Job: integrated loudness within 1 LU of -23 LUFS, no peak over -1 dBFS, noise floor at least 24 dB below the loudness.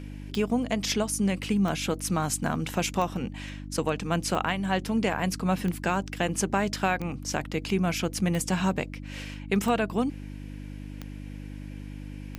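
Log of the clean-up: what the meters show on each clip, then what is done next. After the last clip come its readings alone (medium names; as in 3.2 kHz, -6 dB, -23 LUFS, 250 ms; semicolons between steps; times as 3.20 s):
clicks found 10; hum 50 Hz; highest harmonic 300 Hz; hum level -36 dBFS; loudness -28.0 LUFS; peak level -12.0 dBFS; loudness target -23.0 LUFS
-> de-click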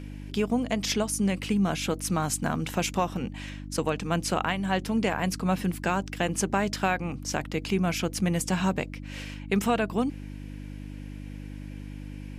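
clicks found 0; hum 50 Hz; highest harmonic 300 Hz; hum level -36 dBFS
-> de-hum 50 Hz, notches 6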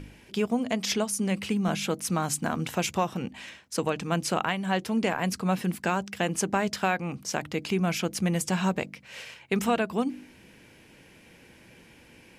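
hum not found; loudness -28.5 LUFS; peak level -12.5 dBFS; loudness target -23.0 LUFS
-> trim +5.5 dB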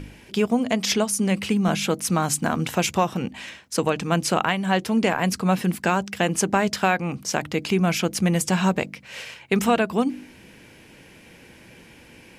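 loudness -23.0 LUFS; peak level -7.0 dBFS; noise floor -49 dBFS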